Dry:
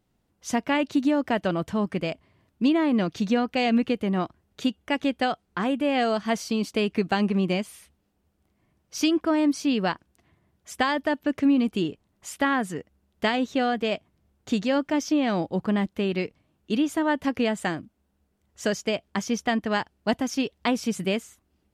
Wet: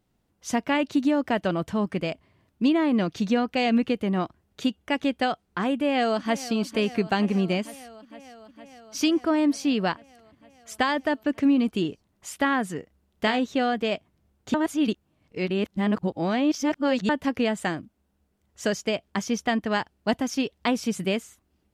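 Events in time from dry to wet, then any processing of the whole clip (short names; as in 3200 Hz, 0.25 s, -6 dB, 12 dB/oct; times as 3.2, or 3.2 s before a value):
5.72–6.5 echo throw 0.46 s, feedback 80%, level -16 dB
12.79–13.4 doubler 32 ms -10.5 dB
14.54–17.09 reverse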